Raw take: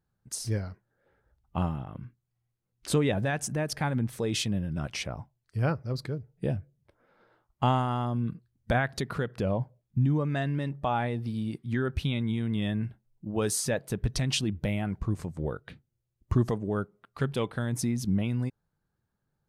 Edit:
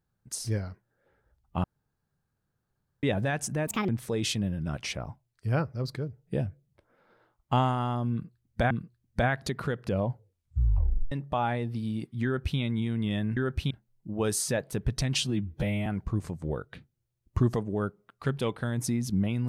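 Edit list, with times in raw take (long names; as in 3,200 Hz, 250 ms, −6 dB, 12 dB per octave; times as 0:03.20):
0:01.64–0:03.03: fill with room tone
0:03.67–0:03.99: play speed 148%
0:08.22–0:08.81: repeat, 2 plays
0:09.60: tape stop 1.03 s
0:11.76–0:12.10: duplicate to 0:12.88
0:14.36–0:14.81: time-stretch 1.5×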